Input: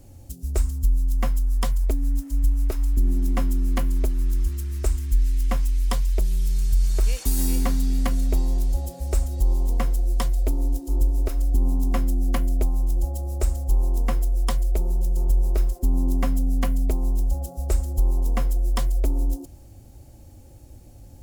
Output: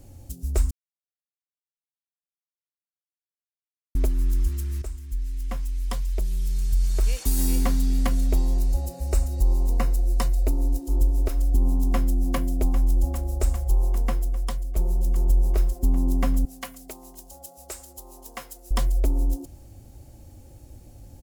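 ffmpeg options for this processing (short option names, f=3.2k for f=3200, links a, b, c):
-filter_complex "[0:a]asettb=1/sr,asplit=3[a][b][c];[a]atrim=end=8.554[d];[b]atrim=start=8.55:end=10.8,asetpts=PTS-STARTPTS,afade=t=in:d=0.004:c=qsin,afade=t=out:st=2.246:d=0.004:c=qsin,asuperstop=centerf=3300:order=8:qfactor=7.8[e];[c]atrim=start=10.796[f];[d][e]acrossfade=d=0.004:c1=hsin:c2=qsin[g];[g][f]acrossfade=d=0.004:c1=qsin:c2=hsin,asplit=2[h][i];[i]afade=t=in:st=11.84:d=0.01,afade=t=out:st=12.34:d=0.01,aecho=0:1:400|800|1200|1600|2000|2400|2800|3200|3600|4000|4400|4800:0.334965|0.284721|0.242013|0.205711|0.174854|0.148626|0.126332|0.107382|0.0912749|0.0775837|0.0659461|0.0560542[j];[h][j]amix=inputs=2:normalize=0,asettb=1/sr,asplit=3[k][l][m];[k]atrim=end=16.454[n];[l]atrim=start=16.45:end=18.71,asetpts=PTS-STARTPTS,afade=t=in:d=0.004:c=qsin,afade=t=out:st=2.256:d=0.004:c=qsin,highpass=f=1.4k:p=1[o];[m]atrim=start=18.706[p];[n][o]acrossfade=d=0.004:c1=hsin:c2=qsin[q];[q][p]acrossfade=d=0.004:c1=qsin:c2=hsin,asplit=5[r][s][t][u][v];[r]atrim=end=0.71,asetpts=PTS-STARTPTS,afade=t=out:st=0.706:d=0.004:c=hsin[w];[s]atrim=start=0.71:end=3.95,asetpts=PTS-STARTPTS,volume=0[x];[t]atrim=start=3.95:end=4.82,asetpts=PTS-STARTPTS,afade=t=in:d=0.004:c=hsin,afade=t=out:st=0.866:d=0.004:c=hsin:silence=0.251189[y];[u]atrim=start=4.82:end=14.76,asetpts=PTS-STARTPTS,afade=t=in:d=2.74:silence=0.251189,afade=t=out:st=9.02:d=0.92:silence=0.334965[z];[v]atrim=start=14.76,asetpts=PTS-STARTPTS,afade=t=in:d=0.004:c=hsin:silence=0.334965[aa];[w][x][y][z][aa]concat=n=5:v=0:a=1"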